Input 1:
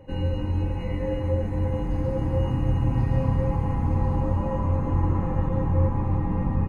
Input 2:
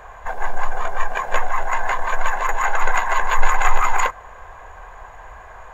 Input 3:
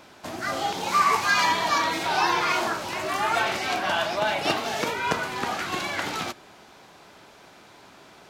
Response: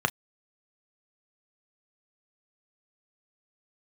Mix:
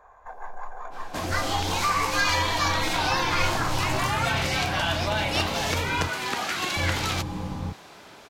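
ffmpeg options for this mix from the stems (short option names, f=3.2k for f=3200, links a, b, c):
-filter_complex "[0:a]adelay=1050,volume=-11dB,asplit=3[a][b][c];[a]atrim=end=6.07,asetpts=PTS-STARTPTS,afade=t=out:st=6.066:d=0.004:c=hsin[d];[b]atrim=start=6.07:end=6.76,asetpts=PTS-STARTPTS,volume=0[e];[c]atrim=start=6.76,asetpts=PTS-STARTPTS,afade=t=in:d=0.004:c=hsin[f];[d][e][f]concat=n=3:v=0:a=1,asplit=2[g][h];[h]volume=-8dB[i];[1:a]volume=-17.5dB,asplit=2[j][k];[k]volume=-12.5dB[l];[2:a]acompressor=threshold=-33dB:ratio=2,adynamicequalizer=threshold=0.00631:dfrequency=1700:dqfactor=0.7:tfrequency=1700:tqfactor=0.7:attack=5:release=100:ratio=0.375:range=3:mode=boostabove:tftype=highshelf,adelay=900,volume=2.5dB[m];[3:a]atrim=start_sample=2205[n];[i][l]amix=inputs=2:normalize=0[o];[o][n]afir=irnorm=-1:irlink=0[p];[g][j][m][p]amix=inputs=4:normalize=0"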